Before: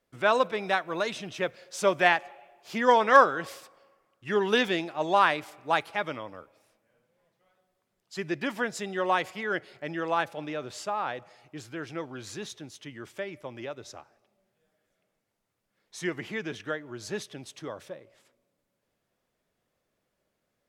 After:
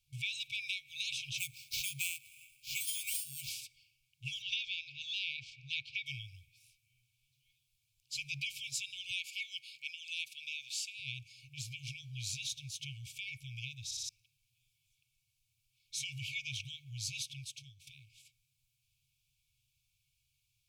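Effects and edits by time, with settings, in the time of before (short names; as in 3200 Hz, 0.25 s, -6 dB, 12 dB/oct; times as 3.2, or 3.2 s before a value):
1.38–3.5 sample-rate reducer 10000 Hz
4.42–6.06 LPF 5300 Hz 24 dB/oct
9.11–11 HPF 330 Hz 24 dB/oct
13.85 stutter in place 0.06 s, 4 plays
17.07–17.87 fade out, to -13.5 dB
whole clip: FFT band-reject 140–2200 Hz; compressor 10:1, threshold -39 dBFS; gain +5 dB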